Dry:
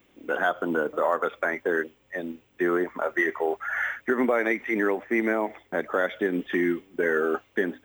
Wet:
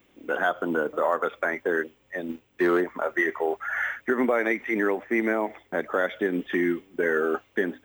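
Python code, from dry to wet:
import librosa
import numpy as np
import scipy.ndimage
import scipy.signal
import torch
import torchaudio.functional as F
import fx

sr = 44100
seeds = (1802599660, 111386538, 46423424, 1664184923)

y = fx.leveller(x, sr, passes=1, at=(2.29, 2.81))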